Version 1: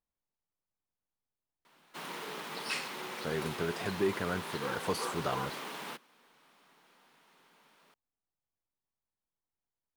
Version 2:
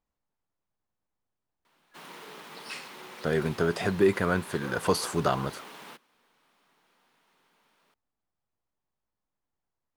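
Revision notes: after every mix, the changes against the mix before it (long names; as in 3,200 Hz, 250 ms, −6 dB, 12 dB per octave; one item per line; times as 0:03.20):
speech +8.5 dB
background −4.0 dB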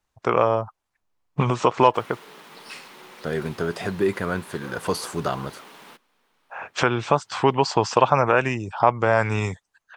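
first voice: unmuted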